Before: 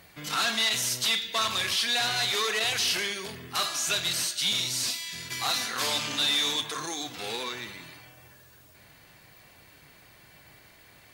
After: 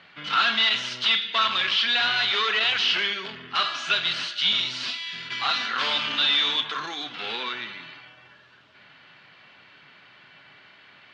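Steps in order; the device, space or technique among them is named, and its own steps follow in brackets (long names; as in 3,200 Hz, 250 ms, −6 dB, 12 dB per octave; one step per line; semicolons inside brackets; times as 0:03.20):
kitchen radio (loudspeaker in its box 210–4,000 Hz, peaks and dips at 320 Hz −6 dB, 480 Hz −6 dB, 710 Hz −4 dB, 1,400 Hz +6 dB, 3,000 Hz +6 dB)
level +3.5 dB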